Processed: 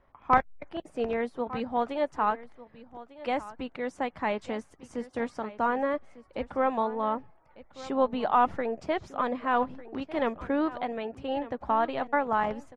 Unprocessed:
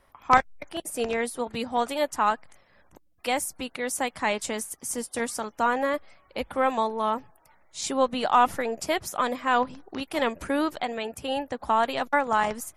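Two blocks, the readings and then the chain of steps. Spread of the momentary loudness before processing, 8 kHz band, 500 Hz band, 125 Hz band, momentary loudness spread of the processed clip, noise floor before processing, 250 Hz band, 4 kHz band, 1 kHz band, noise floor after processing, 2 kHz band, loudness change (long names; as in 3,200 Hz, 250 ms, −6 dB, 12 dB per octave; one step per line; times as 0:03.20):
11 LU, below −20 dB, −1.5 dB, −0.5 dB, 13 LU, −62 dBFS, −1.0 dB, −11.0 dB, −3.0 dB, −60 dBFS, −5.5 dB, −3.0 dB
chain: head-to-tape spacing loss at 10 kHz 33 dB
on a send: single-tap delay 1,199 ms −17 dB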